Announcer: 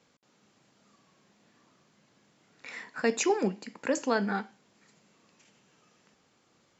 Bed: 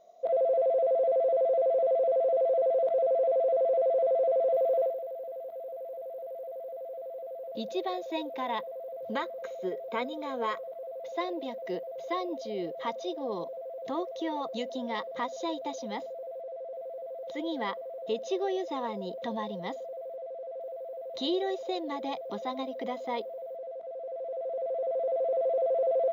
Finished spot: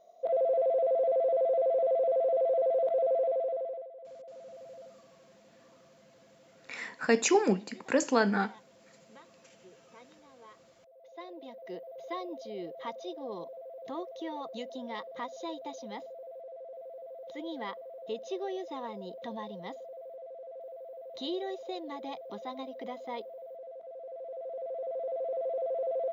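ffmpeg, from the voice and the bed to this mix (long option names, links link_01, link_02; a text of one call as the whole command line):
ffmpeg -i stem1.wav -i stem2.wav -filter_complex "[0:a]adelay=4050,volume=2dB[link_01];[1:a]volume=15.5dB,afade=type=out:start_time=3.15:duration=0.74:silence=0.0891251,afade=type=in:start_time=10.81:duration=1.2:silence=0.141254[link_02];[link_01][link_02]amix=inputs=2:normalize=0" out.wav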